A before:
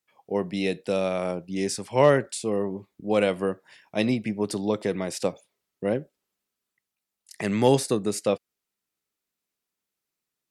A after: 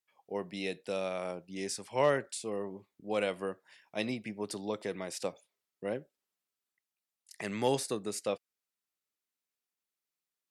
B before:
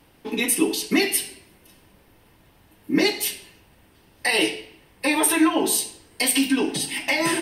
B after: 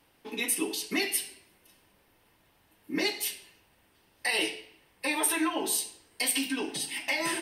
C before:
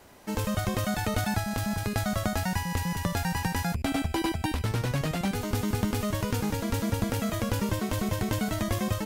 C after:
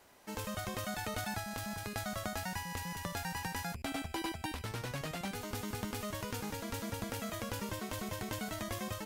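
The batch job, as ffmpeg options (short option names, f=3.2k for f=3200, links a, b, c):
-af "lowshelf=f=390:g=-8,volume=-6.5dB"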